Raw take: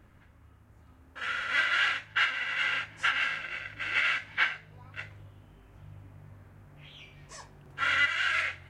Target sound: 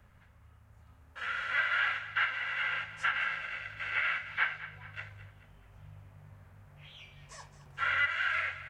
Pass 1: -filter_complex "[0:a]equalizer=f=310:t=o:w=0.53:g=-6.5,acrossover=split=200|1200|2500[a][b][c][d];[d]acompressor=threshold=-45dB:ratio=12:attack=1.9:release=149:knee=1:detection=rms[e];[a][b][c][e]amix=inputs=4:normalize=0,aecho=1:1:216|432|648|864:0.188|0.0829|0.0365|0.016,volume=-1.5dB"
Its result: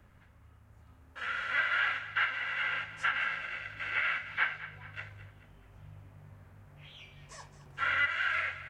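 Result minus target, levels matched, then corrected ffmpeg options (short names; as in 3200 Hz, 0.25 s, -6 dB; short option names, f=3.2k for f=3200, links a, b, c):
250 Hz band +2.5 dB
-filter_complex "[0:a]equalizer=f=310:t=o:w=0.53:g=-16,acrossover=split=200|1200|2500[a][b][c][d];[d]acompressor=threshold=-45dB:ratio=12:attack=1.9:release=149:knee=1:detection=rms[e];[a][b][c][e]amix=inputs=4:normalize=0,aecho=1:1:216|432|648|864:0.188|0.0829|0.0365|0.016,volume=-1.5dB"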